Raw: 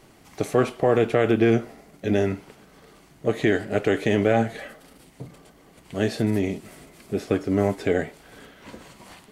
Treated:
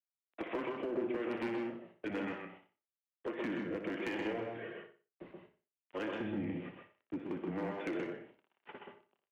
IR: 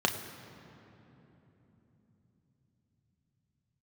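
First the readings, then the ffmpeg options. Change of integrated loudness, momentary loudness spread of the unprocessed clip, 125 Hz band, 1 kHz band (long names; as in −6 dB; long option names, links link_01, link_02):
−16.0 dB, 15 LU, −21.0 dB, −14.5 dB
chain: -filter_complex "[0:a]aresample=8000,asoftclip=type=tanh:threshold=-15.5dB,aresample=44100,acrossover=split=500[link_01][link_02];[link_01]aeval=exprs='val(0)*(1-0.7/2+0.7/2*cos(2*PI*1.1*n/s))':channel_layout=same[link_03];[link_02]aeval=exprs='val(0)*(1-0.7/2-0.7/2*cos(2*PI*1.1*n/s))':channel_layout=same[link_04];[link_03][link_04]amix=inputs=2:normalize=0,agate=range=-20dB:threshold=-44dB:ratio=16:detection=peak,adynamicequalizer=threshold=0.00251:dfrequency=1400:dqfactor=2.5:tfrequency=1400:tqfactor=2.5:attack=5:release=100:ratio=0.375:range=3:mode=cutabove:tftype=bell,acrusher=bits=9:mix=0:aa=0.000001,highpass=frequency=370:width_type=q:width=0.5412,highpass=frequency=370:width_type=q:width=1.307,lowpass=frequency=3100:width_type=q:width=0.5176,lowpass=frequency=3100:width_type=q:width=0.7071,lowpass=frequency=3100:width_type=q:width=1.932,afreqshift=-110,acompressor=threshold=-37dB:ratio=6,asoftclip=type=hard:threshold=-33dB,aecho=1:1:60|120|180:0.251|0.0854|0.029,asplit=2[link_05][link_06];[1:a]atrim=start_sample=2205,afade=type=out:start_time=0.15:duration=0.01,atrim=end_sample=7056,adelay=126[link_07];[link_06][link_07]afir=irnorm=-1:irlink=0,volume=-12dB[link_08];[link_05][link_08]amix=inputs=2:normalize=0,volume=1dB"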